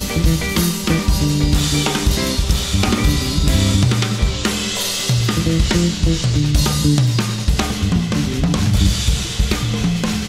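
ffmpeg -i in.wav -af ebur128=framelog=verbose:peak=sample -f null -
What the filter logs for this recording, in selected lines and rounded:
Integrated loudness:
  I:         -17.1 LUFS
  Threshold: -27.1 LUFS
Loudness range:
  LRA:         0.7 LU
  Threshold: -37.0 LUFS
  LRA low:   -17.3 LUFS
  LRA high:  -16.6 LUFS
Sample peak:
  Peak:       -2.6 dBFS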